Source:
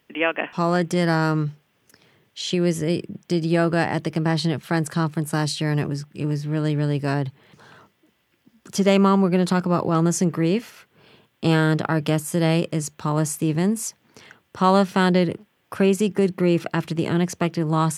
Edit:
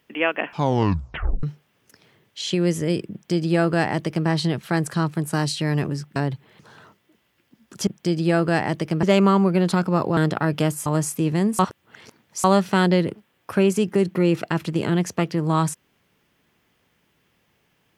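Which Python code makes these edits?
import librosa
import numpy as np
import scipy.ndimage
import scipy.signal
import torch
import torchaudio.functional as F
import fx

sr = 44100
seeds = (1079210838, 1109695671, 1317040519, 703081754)

y = fx.edit(x, sr, fx.tape_stop(start_s=0.47, length_s=0.96),
    fx.duplicate(start_s=3.12, length_s=1.16, to_s=8.81),
    fx.cut(start_s=6.16, length_s=0.94),
    fx.cut(start_s=9.95, length_s=1.7),
    fx.cut(start_s=12.34, length_s=0.75),
    fx.reverse_span(start_s=13.82, length_s=0.85), tone=tone)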